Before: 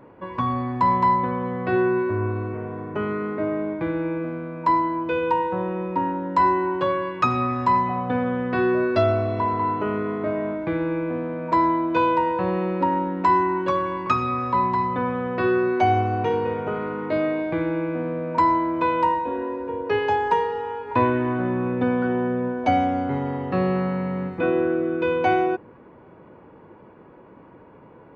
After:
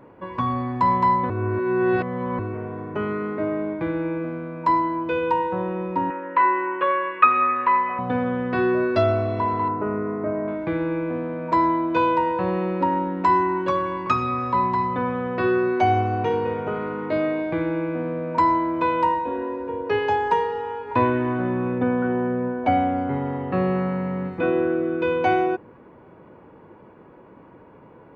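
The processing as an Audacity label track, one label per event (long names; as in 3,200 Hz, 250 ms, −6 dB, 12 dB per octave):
1.300000	2.390000	reverse
6.100000	7.990000	loudspeaker in its box 440–2,900 Hz, peaks and dips at 480 Hz +4 dB, 780 Hz −10 dB, 1,200 Hz +7 dB, 1,800 Hz +7 dB, 2,500 Hz +8 dB
9.680000	10.480000	moving average over 13 samples
21.780000	24.230000	low-pass filter 2,400 Hz → 3,500 Hz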